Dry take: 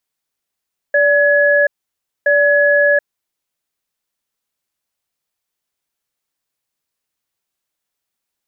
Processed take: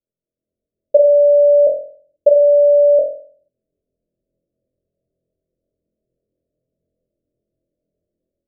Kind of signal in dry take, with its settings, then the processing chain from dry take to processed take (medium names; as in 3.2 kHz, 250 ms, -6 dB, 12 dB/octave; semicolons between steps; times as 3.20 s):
cadence 580 Hz, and 1.69 kHz, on 0.73 s, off 0.59 s, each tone -12 dBFS 2.29 s
Chebyshev low-pass 640 Hz, order 8; level rider gain up to 14 dB; flutter echo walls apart 4 m, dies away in 0.5 s